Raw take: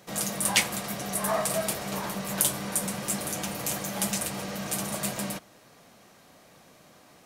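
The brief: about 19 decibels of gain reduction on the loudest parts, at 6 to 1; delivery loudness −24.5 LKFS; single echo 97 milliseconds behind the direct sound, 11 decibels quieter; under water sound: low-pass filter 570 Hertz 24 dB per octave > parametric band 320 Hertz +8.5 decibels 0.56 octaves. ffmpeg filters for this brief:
ffmpeg -i in.wav -af "acompressor=threshold=-39dB:ratio=6,lowpass=frequency=570:width=0.5412,lowpass=frequency=570:width=1.3066,equalizer=frequency=320:width_type=o:width=0.56:gain=8.5,aecho=1:1:97:0.282,volume=20dB" out.wav

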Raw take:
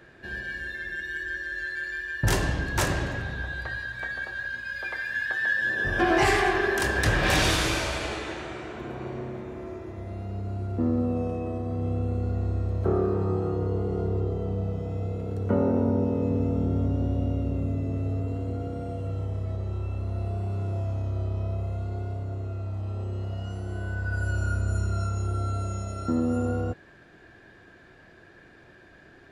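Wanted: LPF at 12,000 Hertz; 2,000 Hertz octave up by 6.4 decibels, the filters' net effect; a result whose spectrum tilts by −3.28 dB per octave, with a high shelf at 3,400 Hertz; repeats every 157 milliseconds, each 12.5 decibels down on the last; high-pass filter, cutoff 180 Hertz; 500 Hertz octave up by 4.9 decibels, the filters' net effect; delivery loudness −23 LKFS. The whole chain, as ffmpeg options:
ffmpeg -i in.wav -af "highpass=180,lowpass=12000,equalizer=frequency=500:width_type=o:gain=6,equalizer=frequency=2000:width_type=o:gain=5.5,highshelf=frequency=3400:gain=8.5,aecho=1:1:157|314|471:0.237|0.0569|0.0137,volume=1dB" out.wav

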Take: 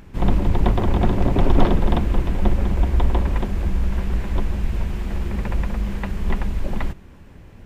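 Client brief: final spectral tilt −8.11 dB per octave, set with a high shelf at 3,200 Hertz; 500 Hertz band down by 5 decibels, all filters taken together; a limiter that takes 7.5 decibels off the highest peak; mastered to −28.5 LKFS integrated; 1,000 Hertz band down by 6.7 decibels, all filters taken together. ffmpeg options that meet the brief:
ffmpeg -i in.wav -af "equalizer=frequency=500:width_type=o:gain=-5.5,equalizer=frequency=1000:width_type=o:gain=-6,highshelf=frequency=3200:gain=-7,volume=-3.5dB,alimiter=limit=-14dB:level=0:latency=1" out.wav

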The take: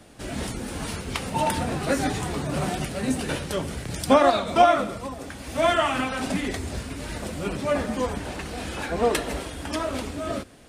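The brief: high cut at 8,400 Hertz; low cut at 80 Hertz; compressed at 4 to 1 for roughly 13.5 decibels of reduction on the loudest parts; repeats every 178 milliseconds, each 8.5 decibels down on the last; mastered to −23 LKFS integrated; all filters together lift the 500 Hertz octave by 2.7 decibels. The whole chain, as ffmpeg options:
ffmpeg -i in.wav -af "highpass=80,lowpass=8400,equalizer=frequency=500:width_type=o:gain=3.5,acompressor=threshold=-26dB:ratio=4,aecho=1:1:178|356|534|712:0.376|0.143|0.0543|0.0206,volume=7dB" out.wav

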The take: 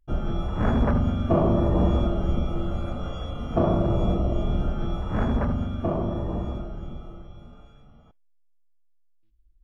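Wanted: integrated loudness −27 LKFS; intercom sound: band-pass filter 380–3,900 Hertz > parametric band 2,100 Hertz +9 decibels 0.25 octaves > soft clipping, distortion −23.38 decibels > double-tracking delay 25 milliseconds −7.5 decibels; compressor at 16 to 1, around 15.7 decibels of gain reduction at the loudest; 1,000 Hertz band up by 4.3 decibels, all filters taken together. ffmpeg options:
ffmpeg -i in.wav -filter_complex "[0:a]equalizer=frequency=1000:width_type=o:gain=6,acompressor=threshold=-32dB:ratio=16,highpass=380,lowpass=3900,equalizer=frequency=2100:width_type=o:width=0.25:gain=9,asoftclip=threshold=-28dB,asplit=2[link_01][link_02];[link_02]adelay=25,volume=-7.5dB[link_03];[link_01][link_03]amix=inputs=2:normalize=0,volume=16.5dB" out.wav

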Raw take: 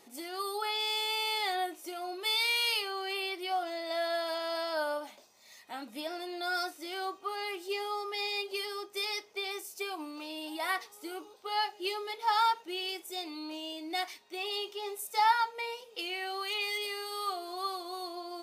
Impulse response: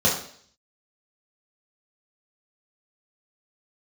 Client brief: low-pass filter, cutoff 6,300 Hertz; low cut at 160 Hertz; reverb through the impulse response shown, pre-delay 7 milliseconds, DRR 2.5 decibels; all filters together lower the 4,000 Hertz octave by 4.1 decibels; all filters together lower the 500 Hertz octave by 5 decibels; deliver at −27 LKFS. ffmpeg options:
-filter_complex "[0:a]highpass=160,lowpass=6300,equalizer=frequency=500:width_type=o:gain=-7.5,equalizer=frequency=4000:width_type=o:gain=-4.5,asplit=2[link_01][link_02];[1:a]atrim=start_sample=2205,adelay=7[link_03];[link_02][link_03]afir=irnorm=-1:irlink=0,volume=-18.5dB[link_04];[link_01][link_04]amix=inputs=2:normalize=0,volume=8dB"

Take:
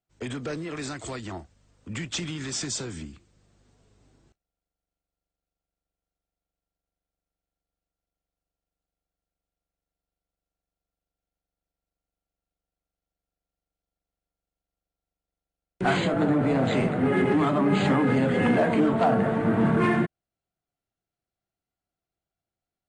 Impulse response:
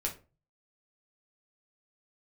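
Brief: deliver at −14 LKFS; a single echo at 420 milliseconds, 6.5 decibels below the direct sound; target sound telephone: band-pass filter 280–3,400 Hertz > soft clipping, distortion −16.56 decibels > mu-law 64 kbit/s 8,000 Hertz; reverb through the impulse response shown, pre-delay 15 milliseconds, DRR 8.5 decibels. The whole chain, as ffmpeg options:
-filter_complex "[0:a]aecho=1:1:420:0.473,asplit=2[link_01][link_02];[1:a]atrim=start_sample=2205,adelay=15[link_03];[link_02][link_03]afir=irnorm=-1:irlink=0,volume=-11.5dB[link_04];[link_01][link_04]amix=inputs=2:normalize=0,highpass=280,lowpass=3400,asoftclip=threshold=-17.5dB,volume=13dB" -ar 8000 -c:a pcm_mulaw

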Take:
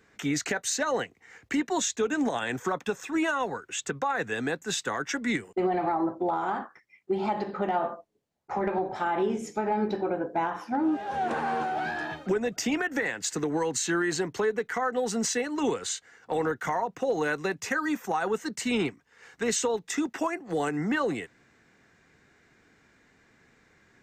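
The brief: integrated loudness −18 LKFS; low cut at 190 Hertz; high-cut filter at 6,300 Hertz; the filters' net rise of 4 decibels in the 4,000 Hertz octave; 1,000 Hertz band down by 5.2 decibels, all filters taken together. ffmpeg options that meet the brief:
ffmpeg -i in.wav -af "highpass=190,lowpass=6300,equalizer=frequency=1000:width_type=o:gain=-7.5,equalizer=frequency=4000:width_type=o:gain=6,volume=13dB" out.wav

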